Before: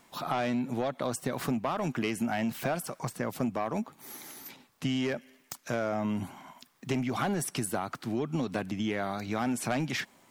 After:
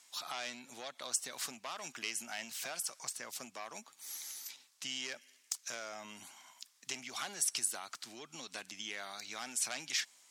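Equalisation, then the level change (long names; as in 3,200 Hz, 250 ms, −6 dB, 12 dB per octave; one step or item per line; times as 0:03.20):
resonant band-pass 6,500 Hz, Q 1.2
+6.5 dB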